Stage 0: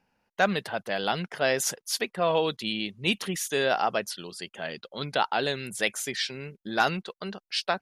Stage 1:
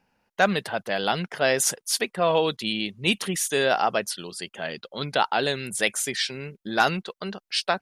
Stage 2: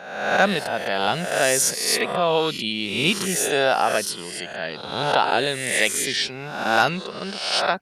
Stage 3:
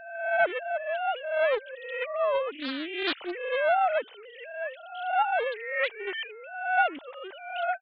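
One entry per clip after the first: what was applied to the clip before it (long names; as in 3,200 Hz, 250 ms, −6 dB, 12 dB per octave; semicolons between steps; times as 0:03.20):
dynamic equaliser 8,900 Hz, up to +6 dB, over −51 dBFS, Q 2.4; level +3 dB
peak hold with a rise ahead of every peak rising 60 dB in 0.94 s
three sine waves on the formant tracks; highs frequency-modulated by the lows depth 0.38 ms; level −6.5 dB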